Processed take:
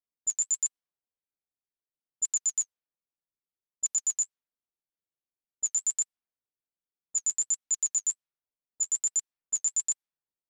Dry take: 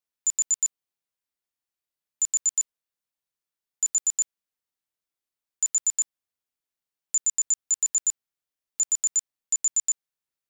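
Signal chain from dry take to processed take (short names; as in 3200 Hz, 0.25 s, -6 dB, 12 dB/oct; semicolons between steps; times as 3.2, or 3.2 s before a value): low-pass opened by the level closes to 580 Hz, open at -24 dBFS; flange 1.3 Hz, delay 2.6 ms, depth 8.7 ms, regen -28%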